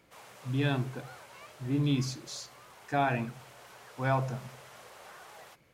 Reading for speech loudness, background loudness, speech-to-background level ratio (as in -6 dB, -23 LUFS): -32.5 LUFS, -51.5 LUFS, 19.0 dB